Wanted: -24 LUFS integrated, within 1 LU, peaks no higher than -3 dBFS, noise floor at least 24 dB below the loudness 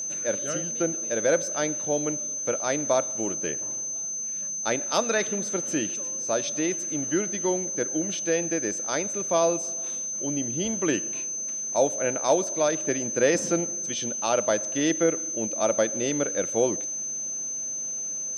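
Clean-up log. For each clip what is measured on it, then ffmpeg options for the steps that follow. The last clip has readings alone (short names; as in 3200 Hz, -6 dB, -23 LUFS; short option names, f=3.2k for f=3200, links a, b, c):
steady tone 6200 Hz; tone level -29 dBFS; loudness -26.0 LUFS; peak -9.5 dBFS; loudness target -24.0 LUFS
-> -af "bandreject=f=6.2k:w=30"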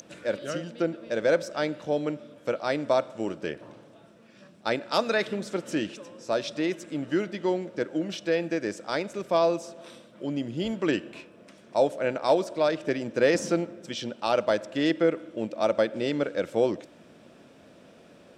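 steady tone none; loudness -28.0 LUFS; peak -10.0 dBFS; loudness target -24.0 LUFS
-> -af "volume=4dB"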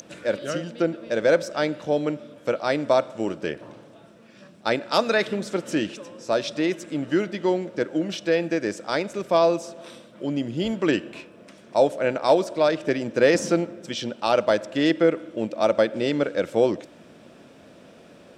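loudness -24.0 LUFS; peak -6.0 dBFS; noise floor -50 dBFS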